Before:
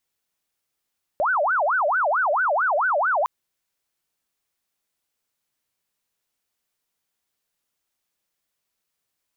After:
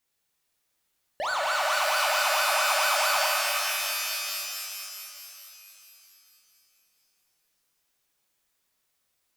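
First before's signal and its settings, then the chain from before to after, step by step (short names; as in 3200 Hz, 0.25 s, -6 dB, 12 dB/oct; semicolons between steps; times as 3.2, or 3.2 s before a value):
siren wail 572–1530 Hz 4.5/s sine -18 dBFS 2.06 s
overloaded stage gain 29 dB; shimmer reverb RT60 3.1 s, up +12 st, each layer -2 dB, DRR -1 dB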